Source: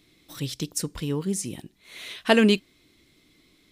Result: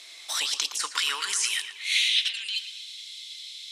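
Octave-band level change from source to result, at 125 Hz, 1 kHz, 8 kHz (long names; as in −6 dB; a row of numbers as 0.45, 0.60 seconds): below −40 dB, −3.0 dB, +6.0 dB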